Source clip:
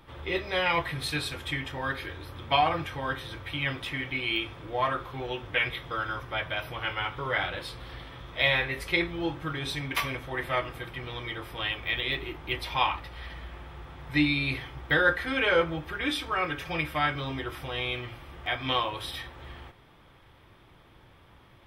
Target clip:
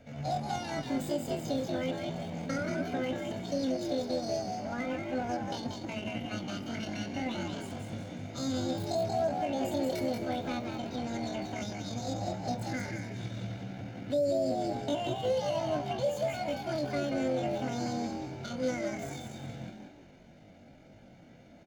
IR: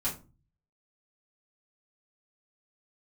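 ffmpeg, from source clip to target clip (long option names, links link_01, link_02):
-filter_complex "[0:a]aecho=1:1:2.7:0.75,acrossover=split=360|4200[link_01][link_02][link_03];[link_02]acompressor=threshold=-34dB:ratio=16[link_04];[link_01][link_04][link_03]amix=inputs=3:normalize=0,highshelf=frequency=8900:gain=-8.5,asetrate=85689,aresample=44100,atempo=0.514651,equalizer=frequency=125:width_type=o:width=1:gain=3,equalizer=frequency=250:width_type=o:width=1:gain=8,equalizer=frequency=500:width_type=o:width=1:gain=10,equalizer=frequency=1000:width_type=o:width=1:gain=-7,equalizer=frequency=4000:width_type=o:width=1:gain=-4,equalizer=frequency=8000:width_type=o:width=1:gain=-10,asplit=2[link_05][link_06];[link_06]acrusher=bits=4:mix=0:aa=0.5,volume=-11.5dB[link_07];[link_05][link_07]amix=inputs=2:normalize=0,bandreject=frequency=60:width_type=h:width=6,bandreject=frequency=120:width_type=h:width=6,asplit=5[link_08][link_09][link_10][link_11][link_12];[link_09]adelay=184,afreqshift=78,volume=-5dB[link_13];[link_10]adelay=368,afreqshift=156,volume=-14.4dB[link_14];[link_11]adelay=552,afreqshift=234,volume=-23.7dB[link_15];[link_12]adelay=736,afreqshift=312,volume=-33.1dB[link_16];[link_08][link_13][link_14][link_15][link_16]amix=inputs=5:normalize=0,alimiter=limit=-16dB:level=0:latency=1:release=133,volume=-5.5dB" -ar 48000 -c:a libopus -b:a 256k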